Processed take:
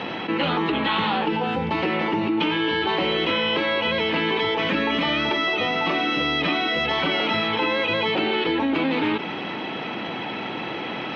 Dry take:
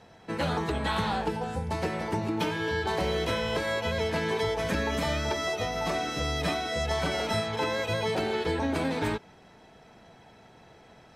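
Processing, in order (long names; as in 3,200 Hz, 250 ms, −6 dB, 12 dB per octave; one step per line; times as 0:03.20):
loudspeaker in its box 270–3,300 Hz, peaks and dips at 310 Hz +4 dB, 440 Hz −7 dB, 670 Hz −10 dB, 960 Hz −3 dB, 1,600 Hz −7 dB, 2,900 Hz +6 dB
envelope flattener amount 70%
level +7 dB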